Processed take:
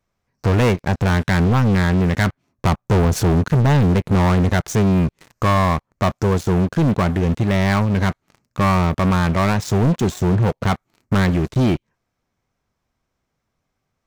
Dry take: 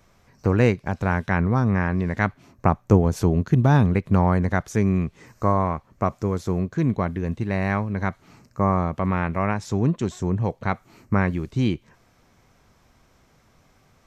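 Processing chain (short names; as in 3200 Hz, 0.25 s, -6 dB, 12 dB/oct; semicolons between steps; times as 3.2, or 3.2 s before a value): sample leveller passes 5; gain -7 dB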